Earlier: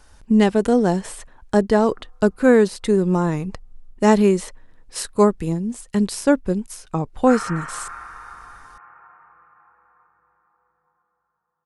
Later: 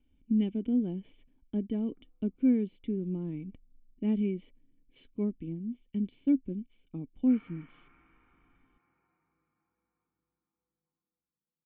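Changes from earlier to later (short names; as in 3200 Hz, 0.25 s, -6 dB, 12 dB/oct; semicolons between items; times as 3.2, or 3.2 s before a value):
speech -5.5 dB; master: add vocal tract filter i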